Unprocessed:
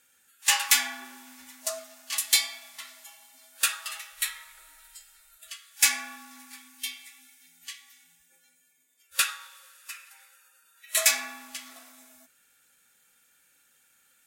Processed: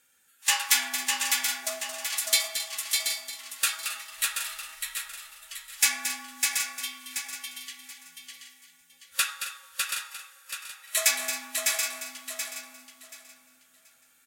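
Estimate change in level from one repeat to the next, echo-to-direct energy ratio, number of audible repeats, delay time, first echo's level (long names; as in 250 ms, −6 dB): repeats not evenly spaced, −0.5 dB, 14, 224 ms, −9.5 dB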